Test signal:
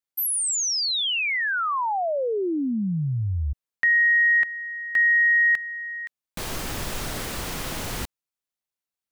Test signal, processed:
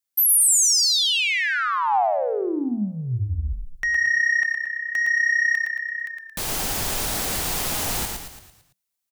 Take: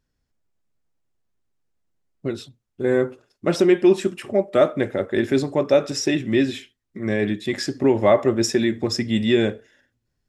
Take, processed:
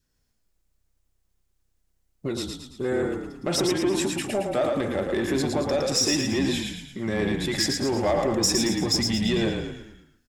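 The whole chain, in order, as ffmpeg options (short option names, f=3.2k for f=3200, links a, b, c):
-filter_complex "[0:a]acompressor=threshold=-21dB:ratio=6:attack=2.5:release=20:knee=6,asoftclip=type=tanh:threshold=-17.5dB,highshelf=f=4.2k:g=9.5,asplit=2[a][b];[b]asplit=6[c][d][e][f][g][h];[c]adelay=112,afreqshift=-32,volume=-4dB[i];[d]adelay=224,afreqshift=-64,volume=-10.4dB[j];[e]adelay=336,afreqshift=-96,volume=-16.8dB[k];[f]adelay=448,afreqshift=-128,volume=-23.1dB[l];[g]adelay=560,afreqshift=-160,volume=-29.5dB[m];[h]adelay=672,afreqshift=-192,volume=-35.9dB[n];[i][j][k][l][m][n]amix=inputs=6:normalize=0[o];[a][o]amix=inputs=2:normalize=0,adynamicequalizer=threshold=0.00501:dfrequency=780:dqfactor=3.8:tfrequency=780:tqfactor=3.8:attack=5:release=100:ratio=0.375:range=3.5:mode=boostabove:tftype=bell"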